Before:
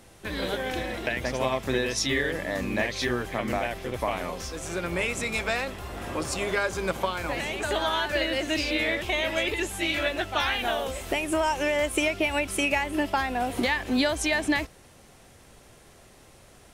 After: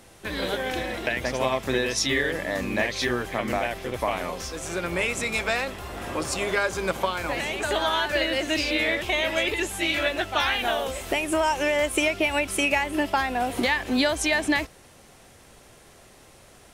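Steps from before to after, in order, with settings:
low-shelf EQ 250 Hz −3.5 dB
level +2.5 dB

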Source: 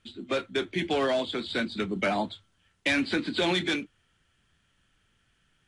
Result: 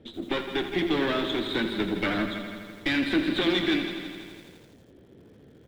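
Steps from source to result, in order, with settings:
lower of the sound and its delayed copy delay 0.55 ms
parametric band 320 Hz +9.5 dB 0.36 octaves
repeating echo 161 ms, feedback 51%, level −14.5 dB
noise in a band 69–470 Hz −54 dBFS
in parallel at −2.5 dB: brickwall limiter −21.5 dBFS, peak gain reduction 8.5 dB
on the sum: high shelf with overshoot 4,800 Hz −9.5 dB, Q 1.5
feedback echo at a low word length 83 ms, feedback 80%, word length 8 bits, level −10 dB
level −4 dB

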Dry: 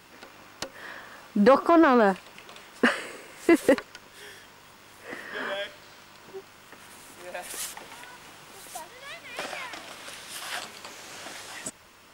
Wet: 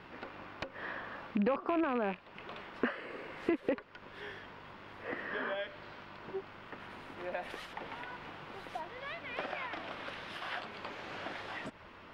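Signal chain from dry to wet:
loose part that buzzes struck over −36 dBFS, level −16 dBFS
downward compressor 3 to 1, threshold −37 dBFS, peak gain reduction 17.5 dB
high-frequency loss of the air 360 metres
level +3.5 dB

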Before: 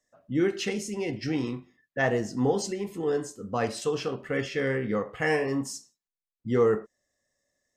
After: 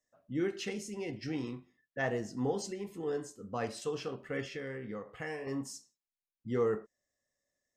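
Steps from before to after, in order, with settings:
0:04.53–0:05.47: downward compressor 2.5 to 1, threshold −32 dBFS, peak gain reduction 8 dB
level −8 dB

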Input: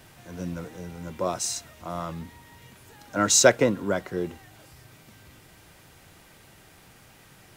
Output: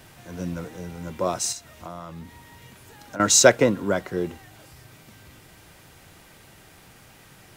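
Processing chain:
0:01.52–0:03.20: downward compressor 6 to 1, threshold −37 dBFS, peak gain reduction 14 dB
level +2.5 dB

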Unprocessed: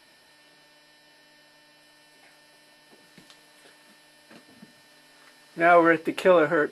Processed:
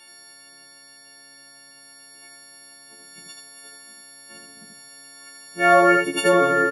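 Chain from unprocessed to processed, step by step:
every partial snapped to a pitch grid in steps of 4 semitones
single-tap delay 80 ms −3 dB

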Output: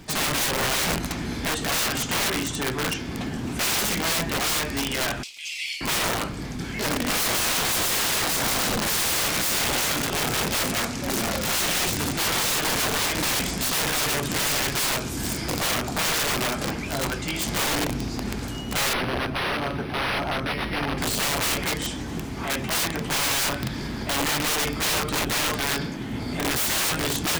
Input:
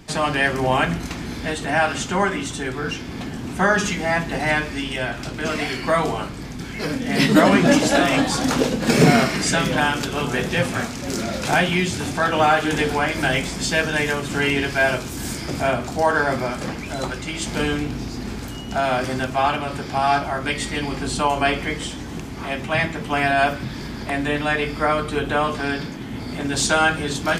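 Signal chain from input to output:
0:05.23–0:05.81: Butterworth high-pass 2,200 Hz 72 dB per octave
surface crackle 240 per second −41 dBFS
wrap-around overflow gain 19 dB
0:18.93–0:20.98: linearly interpolated sample-rate reduction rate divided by 6×

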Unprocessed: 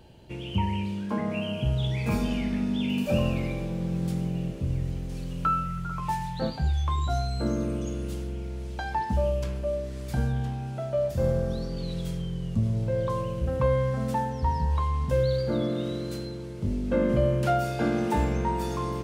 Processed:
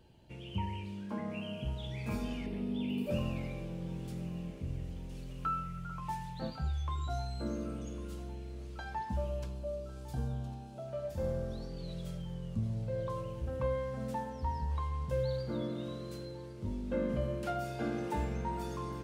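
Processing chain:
0:02.46–0:03.11: graphic EQ with 15 bands 400 Hz +10 dB, 1,600 Hz −7 dB, 6,300 Hz −10 dB
flanger 0.32 Hz, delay 0.6 ms, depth 3.8 ms, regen −71%
0:09.45–0:10.88: parametric band 1,900 Hz −13.5 dB 0.65 octaves
feedback echo with a high-pass in the loop 1,102 ms, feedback 75%, level −18.5 dB
level −5.5 dB

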